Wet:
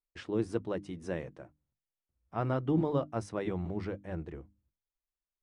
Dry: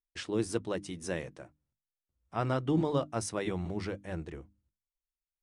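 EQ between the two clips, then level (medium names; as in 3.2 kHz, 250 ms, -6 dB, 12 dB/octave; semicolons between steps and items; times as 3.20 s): low-pass 1.4 kHz 6 dB/octave; 0.0 dB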